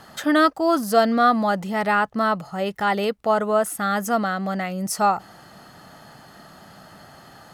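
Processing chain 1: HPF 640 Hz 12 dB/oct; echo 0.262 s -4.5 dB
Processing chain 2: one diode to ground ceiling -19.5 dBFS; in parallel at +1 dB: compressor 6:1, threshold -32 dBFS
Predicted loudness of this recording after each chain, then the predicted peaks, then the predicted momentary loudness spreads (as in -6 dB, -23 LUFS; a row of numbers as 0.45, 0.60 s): -22.5, -21.5 LUFS; -4.5, -7.0 dBFS; 9, 20 LU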